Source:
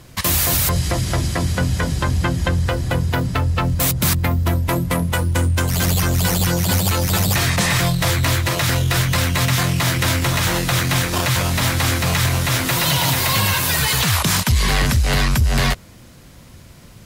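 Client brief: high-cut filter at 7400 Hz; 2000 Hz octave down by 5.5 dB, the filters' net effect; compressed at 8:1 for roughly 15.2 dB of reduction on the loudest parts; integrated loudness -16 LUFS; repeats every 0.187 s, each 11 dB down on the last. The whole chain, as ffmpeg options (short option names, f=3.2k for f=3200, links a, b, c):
-af "lowpass=7.4k,equalizer=f=2k:t=o:g=-7,acompressor=threshold=-29dB:ratio=8,aecho=1:1:187|374|561:0.282|0.0789|0.0221,volume=15.5dB"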